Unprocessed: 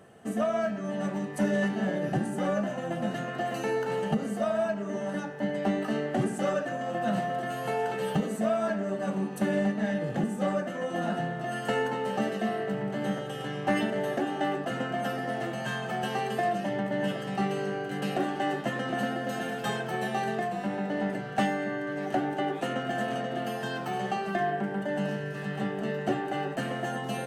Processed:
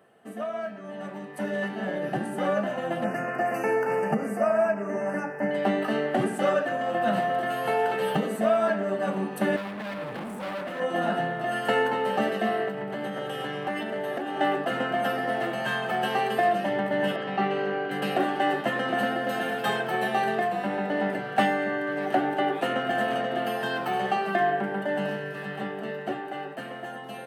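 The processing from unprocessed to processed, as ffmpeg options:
-filter_complex "[0:a]asettb=1/sr,asplit=3[s0][s1][s2];[s0]atrim=end=3.044[s3];[s1]atrim=start=3.04:end=5.51,asetpts=PTS-STARTPTS,afade=t=in:d=0.004:c=qsin,afade=t=out:st=2.466:d=0.004:c=qsin,asuperstop=centerf=3600:order=8:qfactor=1.7[s4];[s2]atrim=start=5.506[s5];[s3][s4]acrossfade=d=0.004:c1=hsin:c2=qsin[s6];[s6][s5]acrossfade=d=0.004:c1=qsin:c2=hsin,asettb=1/sr,asplit=3[s7][s8][s9];[s7]atrim=end=9.564[s10];[s8]atrim=start=9.56:end=10.8,asetpts=PTS-STARTPTS,afade=t=in:d=0.004:c=qsin,afade=t=out:st=1.236:d=0.004:c=qsin,asoftclip=type=hard:threshold=0.0168[s11];[s9]atrim=start=10.796[s12];[s10][s11]acrossfade=d=0.004:c1=hsin:c2=qsin[s13];[s13][s12]acrossfade=d=0.004:c1=qsin:c2=hsin,asettb=1/sr,asplit=3[s14][s15][s16];[s14]atrim=end=12.684[s17];[s15]atrim=start=12.68:end=14.4,asetpts=PTS-STARTPTS,afade=t=in:d=0.004:c=qsin,afade=t=out:st=1.716:d=0.004:c=qsin,acompressor=threshold=0.0282:ratio=6:attack=3.2:release=140:knee=1:detection=peak[s18];[s16]atrim=start=14.396[s19];[s17][s18]acrossfade=d=0.004:c1=hsin:c2=qsin[s20];[s20][s19]acrossfade=d=0.004:c1=qsin:c2=hsin,asettb=1/sr,asplit=3[s21][s22][s23];[s21]atrim=end=17.164[s24];[s22]atrim=start=17.16:end=17.91,asetpts=PTS-STARTPTS,afade=t=in:d=0.004:c=qsin,afade=t=out:st=0.746:d=0.004:c=qsin,highpass=140,lowpass=3800[s25];[s23]atrim=start=17.906[s26];[s24][s25]acrossfade=d=0.004:c1=hsin:c2=qsin[s27];[s27][s26]acrossfade=d=0.004:c1=qsin:c2=hsin,highpass=f=380:p=1,equalizer=f=6600:w=1.4:g=-11,dynaudnorm=f=190:g=21:m=2.99,volume=0.708"

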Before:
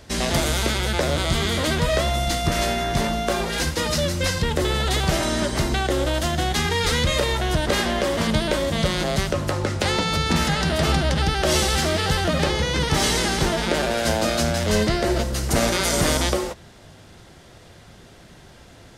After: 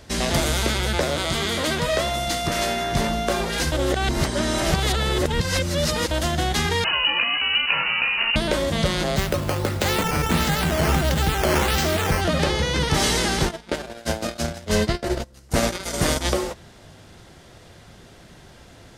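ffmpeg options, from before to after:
-filter_complex "[0:a]asettb=1/sr,asplit=3[s0][s1][s2];[s0]atrim=end=1.044[s3];[s1]atrim=start=1.04:end=2.92,asetpts=PTS-STARTPTS,afade=t=in:d=0.004:c=qsin,afade=t=out:st=1.876:d=0.004:c=qsin,lowshelf=f=130:g=-10[s4];[s2]atrim=start=2.916[s5];[s3][s4]acrossfade=d=0.004:c1=hsin:c2=qsin[s6];[s6][s5]acrossfade=d=0.004:c1=qsin:c2=hsin,asettb=1/sr,asplit=3[s7][s8][s9];[s7]atrim=end=6.844[s10];[s8]atrim=start=6.84:end=8.36,asetpts=PTS-STARTPTS,afade=t=in:d=0.004:c=qsin,afade=t=out:st=1.516:d=0.004:c=qsin,lowpass=f=2600:t=q:w=0.5098,lowpass=f=2600:t=q:w=0.6013,lowpass=f=2600:t=q:w=0.9,lowpass=f=2600:t=q:w=2.563,afreqshift=-3000[s11];[s9]atrim=start=8.356[s12];[s10][s11]acrossfade=d=0.004:c1=hsin:c2=qsin[s13];[s13][s12]acrossfade=d=0.004:c1=qsin:c2=hsin,asplit=3[s14][s15][s16];[s14]afade=t=out:st=9.16:d=0.02[s17];[s15]acrusher=samples=8:mix=1:aa=0.000001:lfo=1:lforange=8:lforate=1.5,afade=t=in:st=9.16:d=0.02,afade=t=out:st=12.2:d=0.02[s18];[s16]afade=t=in:st=12.2:d=0.02[s19];[s17][s18][s19]amix=inputs=3:normalize=0,asplit=3[s20][s21][s22];[s20]afade=t=out:st=13.44:d=0.02[s23];[s21]agate=range=0.0562:threshold=0.0891:ratio=16:release=100:detection=peak,afade=t=in:st=13.44:d=0.02,afade=t=out:st=16.24:d=0.02[s24];[s22]afade=t=in:st=16.24:d=0.02[s25];[s23][s24][s25]amix=inputs=3:normalize=0,asplit=3[s26][s27][s28];[s26]atrim=end=3.722[s29];[s27]atrim=start=3.718:end=6.112,asetpts=PTS-STARTPTS,areverse[s30];[s28]atrim=start=6.108[s31];[s29][s30]acrossfade=d=0.004:c1=hsin:c2=hsin[s32];[s32][s31]acrossfade=d=0.004:c1=hsin:c2=hsin"

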